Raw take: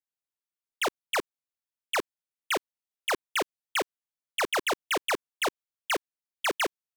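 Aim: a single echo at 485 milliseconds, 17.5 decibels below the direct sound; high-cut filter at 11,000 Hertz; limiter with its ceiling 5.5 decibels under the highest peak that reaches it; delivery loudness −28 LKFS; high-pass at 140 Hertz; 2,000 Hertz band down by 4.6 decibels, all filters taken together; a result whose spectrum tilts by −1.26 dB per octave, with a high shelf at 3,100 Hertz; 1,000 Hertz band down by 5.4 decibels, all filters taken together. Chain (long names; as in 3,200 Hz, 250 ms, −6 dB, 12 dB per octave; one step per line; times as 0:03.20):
high-pass filter 140 Hz
low-pass filter 11,000 Hz
parametric band 1,000 Hz −6 dB
parametric band 2,000 Hz −6.5 dB
high-shelf EQ 3,100 Hz +6 dB
brickwall limiter −24 dBFS
single-tap delay 485 ms −17.5 dB
level +8 dB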